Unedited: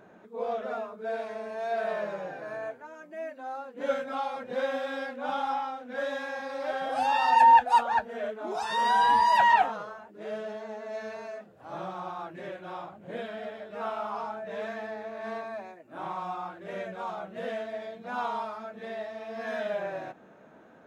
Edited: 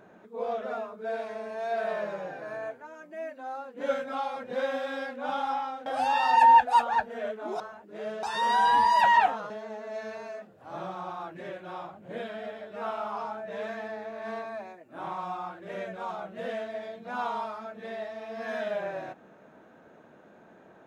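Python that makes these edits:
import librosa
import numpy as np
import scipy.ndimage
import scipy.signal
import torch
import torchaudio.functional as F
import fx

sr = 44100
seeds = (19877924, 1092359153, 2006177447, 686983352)

y = fx.edit(x, sr, fx.cut(start_s=5.86, length_s=0.99),
    fx.move(start_s=9.86, length_s=0.63, to_s=8.59), tone=tone)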